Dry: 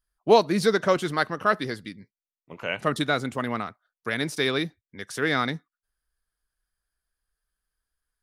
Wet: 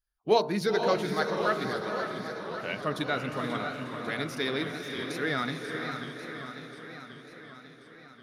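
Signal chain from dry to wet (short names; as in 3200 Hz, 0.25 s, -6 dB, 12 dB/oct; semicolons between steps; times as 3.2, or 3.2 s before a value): bin magnitudes rounded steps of 15 dB; bell 8000 Hz -13.5 dB 0.22 oct; de-hum 56.97 Hz, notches 27; on a send: diffused feedback echo 0.491 s, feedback 41%, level -6 dB; on the sum: warbling echo 0.542 s, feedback 66%, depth 176 cents, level -9.5 dB; gain -5 dB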